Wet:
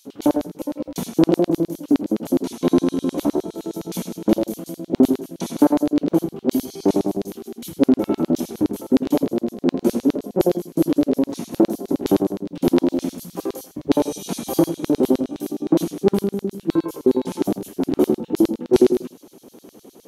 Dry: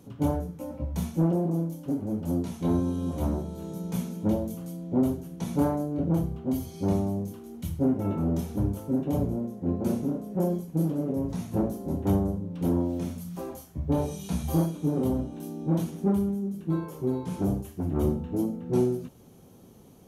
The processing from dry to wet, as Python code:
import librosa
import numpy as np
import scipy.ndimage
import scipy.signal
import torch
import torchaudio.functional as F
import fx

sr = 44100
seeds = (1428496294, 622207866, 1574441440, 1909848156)

y = fx.filter_lfo_highpass(x, sr, shape='square', hz=9.7, low_hz=310.0, high_hz=4100.0, q=2.1)
y = y + 10.0 ** (-16.0 / 20.0) * np.pad(y, (int(85 * sr / 1000.0), 0))[:len(y)]
y = y * librosa.db_to_amplitude(8.5)